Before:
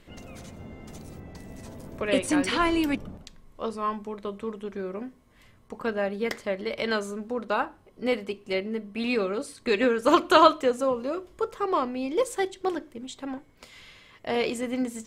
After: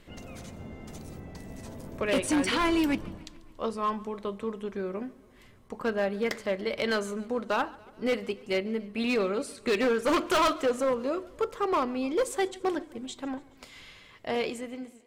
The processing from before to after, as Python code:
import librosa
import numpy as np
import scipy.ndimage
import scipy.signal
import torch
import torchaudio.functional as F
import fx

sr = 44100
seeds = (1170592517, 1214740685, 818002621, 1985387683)

y = fx.fade_out_tail(x, sr, length_s=0.97)
y = np.clip(y, -10.0 ** (-21.0 / 20.0), 10.0 ** (-21.0 / 20.0))
y = fx.echo_warbled(y, sr, ms=142, feedback_pct=60, rate_hz=2.8, cents=108, wet_db=-22.5)